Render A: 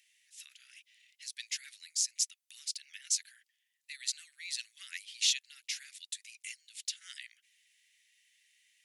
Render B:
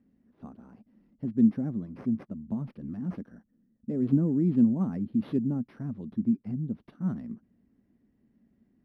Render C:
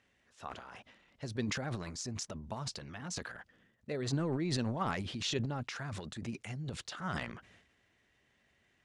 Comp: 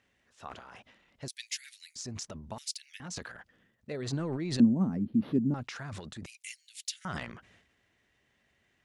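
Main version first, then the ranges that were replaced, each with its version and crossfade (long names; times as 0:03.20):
C
0:01.28–0:01.96: punch in from A
0:02.58–0:03.00: punch in from A
0:04.60–0:05.54: punch in from B
0:06.26–0:07.05: punch in from A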